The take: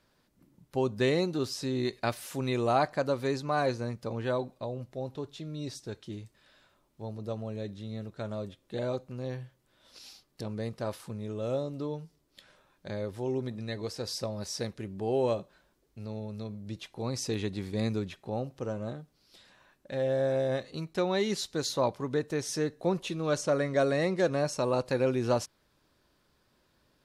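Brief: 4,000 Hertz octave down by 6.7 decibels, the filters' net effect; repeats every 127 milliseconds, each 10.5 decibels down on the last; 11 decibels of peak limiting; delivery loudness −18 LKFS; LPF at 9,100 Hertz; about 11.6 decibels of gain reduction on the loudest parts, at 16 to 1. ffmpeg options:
ffmpeg -i in.wav -af "lowpass=9100,equalizer=frequency=4000:width_type=o:gain=-8,acompressor=threshold=-33dB:ratio=16,alimiter=level_in=10dB:limit=-24dB:level=0:latency=1,volume=-10dB,aecho=1:1:127|254|381:0.299|0.0896|0.0269,volume=25dB" out.wav

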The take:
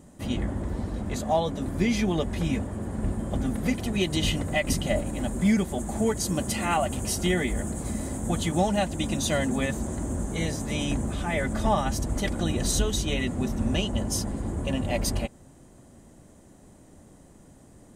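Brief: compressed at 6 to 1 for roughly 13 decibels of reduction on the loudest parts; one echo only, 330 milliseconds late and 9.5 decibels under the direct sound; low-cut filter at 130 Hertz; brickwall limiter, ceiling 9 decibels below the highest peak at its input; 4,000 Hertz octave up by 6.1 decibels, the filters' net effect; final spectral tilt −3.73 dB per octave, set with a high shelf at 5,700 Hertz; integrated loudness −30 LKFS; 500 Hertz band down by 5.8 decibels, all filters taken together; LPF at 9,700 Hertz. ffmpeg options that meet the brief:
ffmpeg -i in.wav -af "highpass=130,lowpass=9700,equalizer=frequency=500:width_type=o:gain=-8,equalizer=frequency=4000:width_type=o:gain=6.5,highshelf=frequency=5700:gain=5,acompressor=threshold=-34dB:ratio=6,alimiter=level_in=6.5dB:limit=-24dB:level=0:latency=1,volume=-6.5dB,aecho=1:1:330:0.335,volume=9dB" out.wav

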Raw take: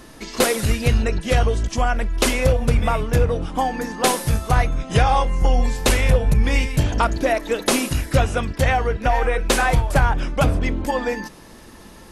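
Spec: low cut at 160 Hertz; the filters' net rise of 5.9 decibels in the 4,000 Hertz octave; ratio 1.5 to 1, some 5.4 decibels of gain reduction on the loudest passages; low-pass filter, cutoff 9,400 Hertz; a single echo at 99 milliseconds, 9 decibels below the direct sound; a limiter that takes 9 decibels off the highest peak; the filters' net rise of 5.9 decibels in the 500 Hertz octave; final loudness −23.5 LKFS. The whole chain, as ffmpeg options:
ffmpeg -i in.wav -af "highpass=160,lowpass=9400,equalizer=frequency=500:width_type=o:gain=6.5,equalizer=frequency=4000:width_type=o:gain=7.5,acompressor=threshold=-25dB:ratio=1.5,alimiter=limit=-14dB:level=0:latency=1,aecho=1:1:99:0.355,volume=1dB" out.wav

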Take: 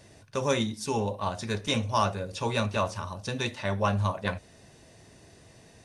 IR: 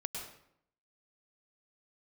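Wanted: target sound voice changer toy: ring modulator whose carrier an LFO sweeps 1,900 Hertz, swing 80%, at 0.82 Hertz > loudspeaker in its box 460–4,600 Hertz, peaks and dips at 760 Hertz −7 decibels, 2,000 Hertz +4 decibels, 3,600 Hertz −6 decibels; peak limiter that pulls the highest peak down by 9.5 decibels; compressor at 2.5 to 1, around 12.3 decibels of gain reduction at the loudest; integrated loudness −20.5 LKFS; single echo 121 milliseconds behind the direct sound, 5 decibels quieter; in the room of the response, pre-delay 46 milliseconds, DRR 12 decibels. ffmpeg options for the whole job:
-filter_complex "[0:a]acompressor=threshold=-41dB:ratio=2.5,alimiter=level_in=6.5dB:limit=-24dB:level=0:latency=1,volume=-6.5dB,aecho=1:1:121:0.562,asplit=2[link_01][link_02];[1:a]atrim=start_sample=2205,adelay=46[link_03];[link_02][link_03]afir=irnorm=-1:irlink=0,volume=-12.5dB[link_04];[link_01][link_04]amix=inputs=2:normalize=0,aeval=exprs='val(0)*sin(2*PI*1900*n/s+1900*0.8/0.82*sin(2*PI*0.82*n/s))':channel_layout=same,highpass=460,equalizer=frequency=760:width_type=q:width=4:gain=-7,equalizer=frequency=2000:width_type=q:width=4:gain=4,equalizer=frequency=3600:width_type=q:width=4:gain=-6,lowpass=frequency=4600:width=0.5412,lowpass=frequency=4600:width=1.3066,volume=22dB"

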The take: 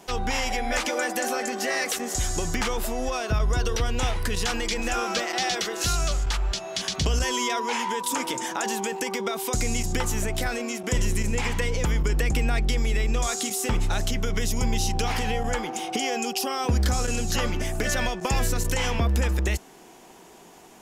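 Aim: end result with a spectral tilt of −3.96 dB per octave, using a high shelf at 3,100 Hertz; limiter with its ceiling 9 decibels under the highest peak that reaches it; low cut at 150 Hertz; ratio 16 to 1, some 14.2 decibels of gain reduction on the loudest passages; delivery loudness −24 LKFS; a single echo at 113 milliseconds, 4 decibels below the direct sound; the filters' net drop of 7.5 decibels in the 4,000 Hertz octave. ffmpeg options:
ffmpeg -i in.wav -af "highpass=150,highshelf=frequency=3100:gain=-5.5,equalizer=frequency=4000:width_type=o:gain=-6,acompressor=threshold=-38dB:ratio=16,alimiter=level_in=10dB:limit=-24dB:level=0:latency=1,volume=-10dB,aecho=1:1:113:0.631,volume=18dB" out.wav

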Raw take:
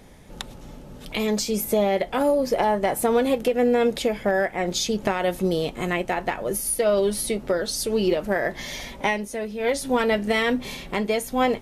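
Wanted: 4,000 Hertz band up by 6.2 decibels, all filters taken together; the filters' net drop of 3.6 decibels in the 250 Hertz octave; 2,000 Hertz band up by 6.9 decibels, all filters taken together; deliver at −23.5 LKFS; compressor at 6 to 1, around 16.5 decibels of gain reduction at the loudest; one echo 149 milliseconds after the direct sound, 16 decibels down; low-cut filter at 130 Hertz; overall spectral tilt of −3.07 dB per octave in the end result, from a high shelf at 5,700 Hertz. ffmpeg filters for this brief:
ffmpeg -i in.wav -af "highpass=130,equalizer=frequency=250:width_type=o:gain=-4,equalizer=frequency=2000:width_type=o:gain=6.5,equalizer=frequency=4000:width_type=o:gain=4.5,highshelf=frequency=5700:gain=3.5,acompressor=threshold=-34dB:ratio=6,aecho=1:1:149:0.158,volume=12.5dB" out.wav

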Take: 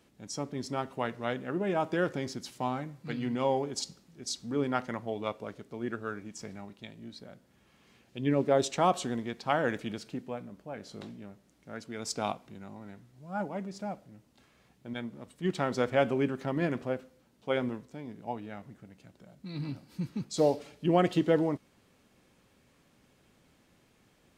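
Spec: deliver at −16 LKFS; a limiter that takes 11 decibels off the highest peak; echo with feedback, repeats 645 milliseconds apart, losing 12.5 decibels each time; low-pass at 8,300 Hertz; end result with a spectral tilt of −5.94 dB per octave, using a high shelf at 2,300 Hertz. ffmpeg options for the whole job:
ffmpeg -i in.wav -af "lowpass=8300,highshelf=frequency=2300:gain=-6.5,alimiter=limit=-23.5dB:level=0:latency=1,aecho=1:1:645|1290|1935:0.237|0.0569|0.0137,volume=21.5dB" out.wav

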